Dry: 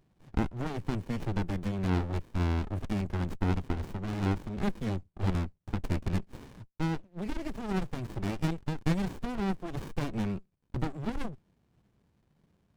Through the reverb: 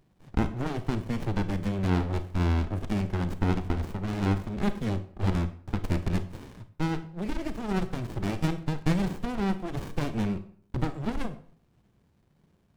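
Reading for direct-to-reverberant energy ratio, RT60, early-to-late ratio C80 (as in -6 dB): 10.5 dB, 0.55 s, 17.0 dB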